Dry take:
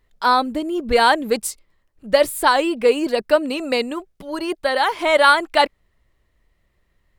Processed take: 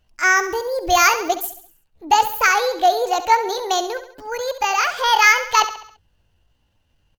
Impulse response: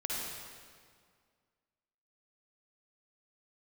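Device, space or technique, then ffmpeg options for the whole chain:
chipmunk voice: -filter_complex "[0:a]asettb=1/sr,asplit=3[link_01][link_02][link_03];[link_01]atrim=end=0.374[link_04];[link_02]atrim=start=0.37:end=1.22,asetpts=PTS-STARTPTS,afade=type=in:duration=0.004:curve=qsin,afade=type=out:start_time=0.846:duration=0.004:curve=qsin,aemphasis=mode=production:type=cd[link_05];[link_03]atrim=start=1.216[link_06];[link_04][link_05]acrossfade=duration=0.004:curve1=hsin:curve2=qsin[link_07];[link_07][link_06]acrossfade=duration=0.004:curve1=qsin:curve2=hsin,asetrate=66075,aresample=44100,atempo=0.66742,aecho=1:1:68|136|204|272|340:0.251|0.121|0.0579|0.0278|0.0133"

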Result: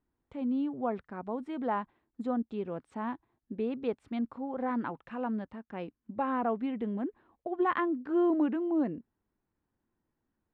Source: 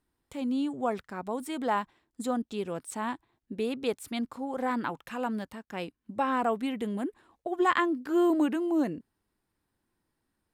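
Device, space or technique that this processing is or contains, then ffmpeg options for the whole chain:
phone in a pocket: -af "lowpass=3100,equalizer=frequency=230:width_type=o:width=0.27:gain=2.5,highshelf=frequency=2200:gain=-11,volume=-2dB"

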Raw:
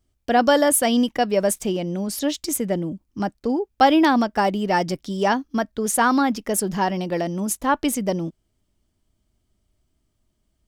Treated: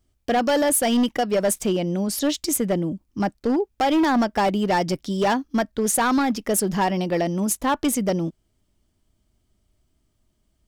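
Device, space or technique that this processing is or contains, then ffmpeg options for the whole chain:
limiter into clipper: -af "alimiter=limit=-11.5dB:level=0:latency=1:release=177,asoftclip=type=hard:threshold=-17.5dB,volume=2dB"

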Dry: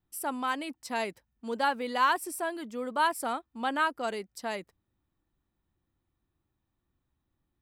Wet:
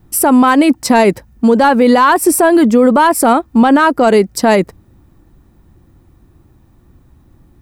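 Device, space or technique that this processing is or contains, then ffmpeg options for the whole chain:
mastering chain: -af "equalizer=frequency=3300:width_type=o:width=0.56:gain=-4,acompressor=threshold=-34dB:ratio=1.5,asoftclip=type=tanh:threshold=-21dB,tiltshelf=frequency=720:gain=5,alimiter=level_in=30dB:limit=-1dB:release=50:level=0:latency=1,volume=-1dB"

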